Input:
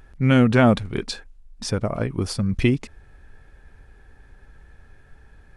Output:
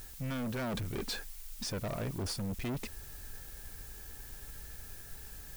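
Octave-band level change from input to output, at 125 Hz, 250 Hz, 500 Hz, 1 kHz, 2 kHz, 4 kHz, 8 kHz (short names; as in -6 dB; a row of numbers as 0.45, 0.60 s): -16.5, -18.0, -17.0, -16.5, -15.5, -9.0, -5.0 dB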